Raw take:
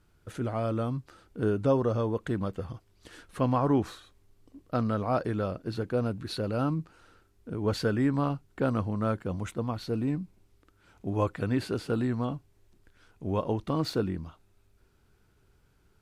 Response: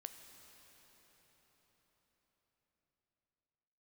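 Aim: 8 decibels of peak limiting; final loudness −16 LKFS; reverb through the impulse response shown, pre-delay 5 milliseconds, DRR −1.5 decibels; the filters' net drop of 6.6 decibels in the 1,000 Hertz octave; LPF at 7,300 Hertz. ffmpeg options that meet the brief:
-filter_complex "[0:a]lowpass=7300,equalizer=frequency=1000:width_type=o:gain=-9,alimiter=limit=-24dB:level=0:latency=1,asplit=2[link_01][link_02];[1:a]atrim=start_sample=2205,adelay=5[link_03];[link_02][link_03]afir=irnorm=-1:irlink=0,volume=6.5dB[link_04];[link_01][link_04]amix=inputs=2:normalize=0,volume=16dB"

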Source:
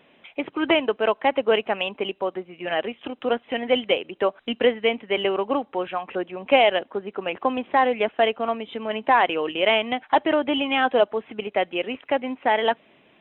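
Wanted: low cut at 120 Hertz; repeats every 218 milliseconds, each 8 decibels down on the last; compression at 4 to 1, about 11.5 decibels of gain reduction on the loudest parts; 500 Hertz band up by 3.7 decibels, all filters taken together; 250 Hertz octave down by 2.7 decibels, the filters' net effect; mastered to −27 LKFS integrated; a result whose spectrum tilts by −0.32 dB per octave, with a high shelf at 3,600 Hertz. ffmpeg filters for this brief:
ffmpeg -i in.wav -af "highpass=120,equalizer=frequency=250:width_type=o:gain=-5.5,equalizer=frequency=500:width_type=o:gain=5.5,highshelf=frequency=3600:gain=5,acompressor=threshold=-24dB:ratio=4,aecho=1:1:218|436|654|872|1090:0.398|0.159|0.0637|0.0255|0.0102,volume=1dB" out.wav

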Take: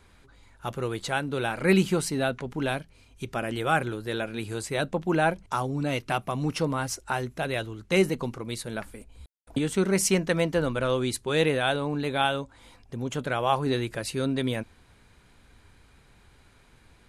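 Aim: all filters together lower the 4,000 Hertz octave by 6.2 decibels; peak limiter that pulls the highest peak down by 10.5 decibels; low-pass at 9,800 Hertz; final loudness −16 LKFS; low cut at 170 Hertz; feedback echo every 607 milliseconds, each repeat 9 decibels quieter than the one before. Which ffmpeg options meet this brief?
ffmpeg -i in.wav -af "highpass=170,lowpass=9800,equalizer=frequency=4000:width_type=o:gain=-8,alimiter=limit=-20dB:level=0:latency=1,aecho=1:1:607|1214|1821|2428:0.355|0.124|0.0435|0.0152,volume=16dB" out.wav

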